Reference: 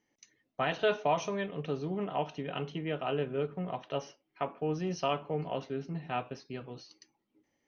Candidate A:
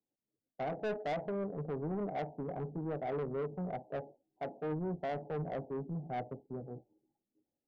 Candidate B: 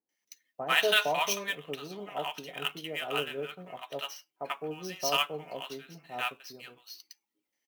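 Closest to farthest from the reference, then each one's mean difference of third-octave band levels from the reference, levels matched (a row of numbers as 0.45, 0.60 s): A, B; 6.5, 11.0 dB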